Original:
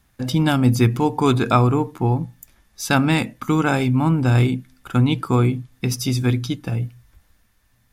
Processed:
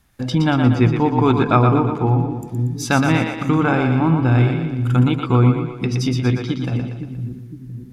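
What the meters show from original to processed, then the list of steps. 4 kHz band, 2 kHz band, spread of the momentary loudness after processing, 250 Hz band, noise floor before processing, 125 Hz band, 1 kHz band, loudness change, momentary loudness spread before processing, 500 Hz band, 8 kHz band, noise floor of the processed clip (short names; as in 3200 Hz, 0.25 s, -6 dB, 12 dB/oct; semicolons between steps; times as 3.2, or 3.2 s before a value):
-1.5 dB, +1.5 dB, 11 LU, +2.5 dB, -62 dBFS, +2.5 dB, +2.5 dB, +2.0 dB, 9 LU, +2.5 dB, -2.5 dB, -36 dBFS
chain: treble ducked by the level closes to 2800 Hz, closed at -17 dBFS; split-band echo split 300 Hz, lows 0.511 s, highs 0.118 s, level -5.5 dB; gain +1 dB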